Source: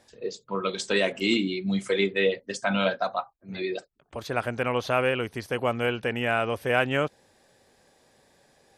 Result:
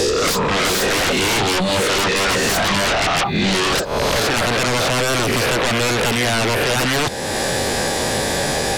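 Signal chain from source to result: reverse spectral sustain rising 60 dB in 0.58 s; reverse; compression 8:1, threshold -36 dBFS, peak gain reduction 19 dB; reverse; sine folder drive 18 dB, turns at -23.5 dBFS; three bands compressed up and down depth 100%; trim +8.5 dB

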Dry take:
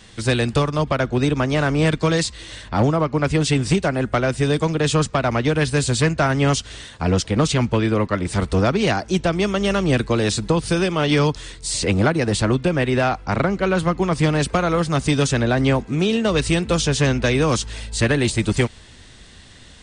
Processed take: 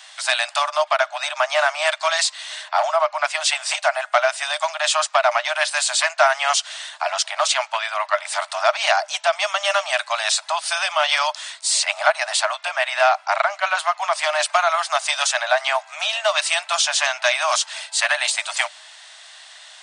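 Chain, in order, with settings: Chebyshev high-pass 600 Hz, order 10; trim +5.5 dB

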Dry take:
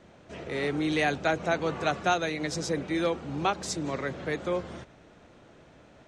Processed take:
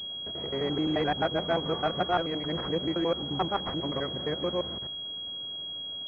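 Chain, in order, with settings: time reversed locally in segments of 87 ms; class-D stage that switches slowly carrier 3.3 kHz

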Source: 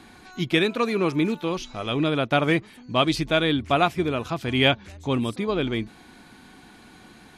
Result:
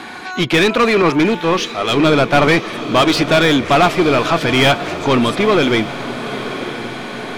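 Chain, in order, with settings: overdrive pedal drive 26 dB, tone 2.4 kHz, clips at -6 dBFS; echo that smears into a reverb 1004 ms, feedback 59%, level -12 dB; 1.02–2.47 s: three bands expanded up and down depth 70%; trim +2.5 dB

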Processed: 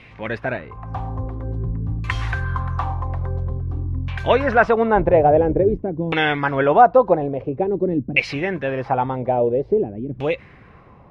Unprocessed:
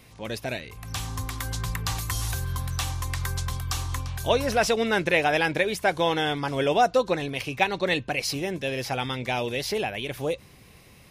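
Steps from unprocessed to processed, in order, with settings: 4.95–5.82 s: octave divider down 2 oct, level 0 dB; LFO low-pass saw down 0.49 Hz 220–2600 Hz; trim +5.5 dB

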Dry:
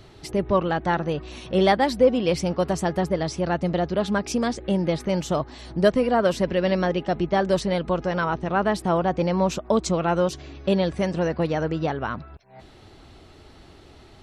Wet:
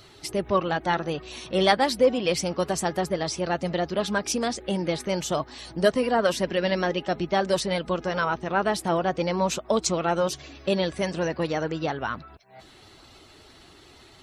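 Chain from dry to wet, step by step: coarse spectral quantiser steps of 15 dB; tilt EQ +2 dB/octave

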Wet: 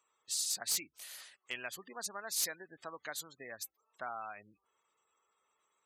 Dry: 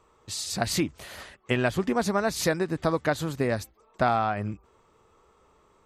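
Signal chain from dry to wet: spectral gate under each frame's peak -25 dB strong; differentiator; hard clipper -26.5 dBFS, distortion -18 dB

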